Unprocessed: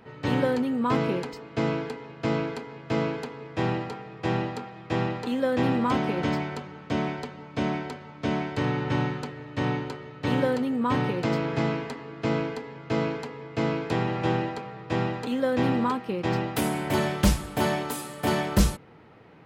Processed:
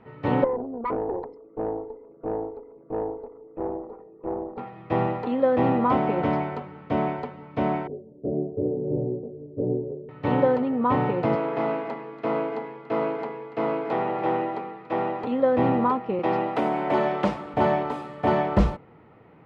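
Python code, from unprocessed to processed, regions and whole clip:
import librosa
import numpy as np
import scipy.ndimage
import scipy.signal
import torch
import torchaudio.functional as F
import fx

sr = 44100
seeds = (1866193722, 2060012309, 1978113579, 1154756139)

y = fx.chain(x, sr, fx.envelope_sharpen(power=3.0),
    fx.highpass(hz=280.0, slope=12),
    fx.tube_stage(drive_db=25.0, bias=0.8), at=(0.44, 4.58))
y = fx.chain(y, sr, fx.ellip_lowpass(hz=570.0, order=4, stop_db=70),
    fx.peak_eq(hz=400.0, db=13.5, octaves=0.31),
    fx.detune_double(cents=22), at=(7.87, 10.09))
y = fx.chain(y, sr, fx.highpass(hz=250.0, slope=12),
    fx.echo_single(ms=286, db=-13.5),
    fx.transformer_sat(knee_hz=820.0), at=(11.35, 15.24))
y = fx.chain(y, sr, fx.highpass(hz=220.0, slope=12),
    fx.band_squash(depth_pct=40), at=(16.19, 17.54))
y = fx.dynamic_eq(y, sr, hz=700.0, q=0.91, threshold_db=-41.0, ratio=4.0, max_db=7)
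y = scipy.signal.sosfilt(scipy.signal.butter(2, 2100.0, 'lowpass', fs=sr, output='sos'), y)
y = fx.notch(y, sr, hz=1600.0, q=9.9)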